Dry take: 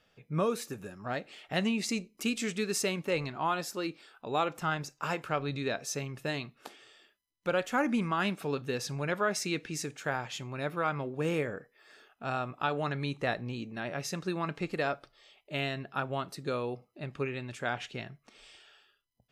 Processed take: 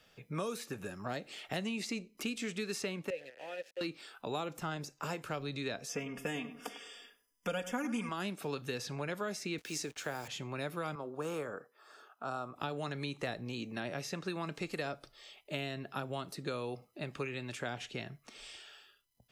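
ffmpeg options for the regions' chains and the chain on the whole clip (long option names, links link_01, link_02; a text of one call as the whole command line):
ffmpeg -i in.wav -filter_complex "[0:a]asettb=1/sr,asplit=3[link_01][link_02][link_03];[link_01]atrim=end=3.104[link_04];[link_02]atrim=start=3.1:end=3.81,asetpts=PTS-STARTPTS,afade=type=in:duration=0.004:curve=qsin,afade=type=out:start_time=0.706:duration=0.004:curve=qsin,aeval=exprs='val(0)*gte(abs(val(0)),0.0178)':channel_layout=same,asplit=3[link_05][link_06][link_07];[link_05]bandpass=frequency=530:width_type=q:width=8,volume=0dB[link_08];[link_06]bandpass=frequency=1840:width_type=q:width=8,volume=-6dB[link_09];[link_07]bandpass=frequency=2480:width_type=q:width=8,volume=-9dB[link_10];[link_08][link_09][link_10]amix=inputs=3:normalize=0[link_11];[link_03]atrim=start=3.806[link_12];[link_04][link_11]acrossfade=duration=0.004:curve1=hsin:curve2=qsin[link_13];[link_13][link_12]acrossfade=duration=0.004:curve1=qsin:curve2=hsin,asettb=1/sr,asplit=3[link_14][link_15][link_16];[link_14]atrim=end=5.894[link_17];[link_15]atrim=start=5.89:end=8.09,asetpts=PTS-STARTPTS,afade=type=in:duration=0.004:curve=qsin,afade=type=out:start_time=2.196:duration=0.004:curve=qsin,asuperstop=centerf=4100:order=12:qfactor=4.2,aecho=1:1:4.2:0.85,atrim=end_sample=97020,asplit=2[link_18][link_19];[link_19]adelay=99,lowpass=frequency=1500:poles=1,volume=-13dB,asplit=2[link_20][link_21];[link_21]adelay=99,lowpass=frequency=1500:poles=1,volume=0.3,asplit=2[link_22][link_23];[link_23]adelay=99,lowpass=frequency=1500:poles=1,volume=0.3[link_24];[link_18][link_20][link_22][link_24]amix=inputs=4:normalize=0,atrim=end_sample=97020[link_25];[link_16]atrim=start=8.086[link_26];[link_17][link_25]acrossfade=duration=0.004:curve1=hsin:curve2=qsin[link_27];[link_27][link_26]acrossfade=duration=0.004:curve1=qsin:curve2=hsin,asettb=1/sr,asplit=3[link_28][link_29][link_30];[link_28]atrim=end=9.584[link_31];[link_29]atrim=start=9.58:end=10.28,asetpts=PTS-STARTPTS,afade=type=in:duration=0.004:curve=qsin,afade=type=out:start_time=0.696:duration=0.004:curve=qsin,highpass=100,bass=frequency=250:gain=-9,treble=frequency=4000:gain=13,acrusher=bits=7:mix=0:aa=0.5[link_32];[link_30]atrim=start=10.276[link_33];[link_31][link_32]acrossfade=duration=0.004:curve1=hsin:curve2=qsin[link_34];[link_34][link_33]acrossfade=duration=0.004:curve1=qsin:curve2=hsin,asettb=1/sr,asplit=3[link_35][link_36][link_37];[link_35]atrim=end=10.954[link_38];[link_36]atrim=start=10.95:end=12.56,asetpts=PTS-STARTPTS,afade=type=in:duration=0.004:curve=qsin,afade=type=out:start_time=1.606:duration=0.004:curve=qsin,highpass=frequency=540:poles=1,highshelf=frequency=1600:width_type=q:width=3:gain=-7[link_39];[link_37]atrim=start=12.556[link_40];[link_38][link_39]acrossfade=duration=0.004:curve1=hsin:curve2=qsin[link_41];[link_41][link_40]acrossfade=duration=0.004:curve1=qsin:curve2=hsin,highshelf=frequency=4000:gain=6.5,acrossover=split=240|600|4000[link_42][link_43][link_44][link_45];[link_42]acompressor=threshold=-48dB:ratio=4[link_46];[link_43]acompressor=threshold=-44dB:ratio=4[link_47];[link_44]acompressor=threshold=-45dB:ratio=4[link_48];[link_45]acompressor=threshold=-53dB:ratio=4[link_49];[link_46][link_47][link_48][link_49]amix=inputs=4:normalize=0,volume=2.5dB" out.wav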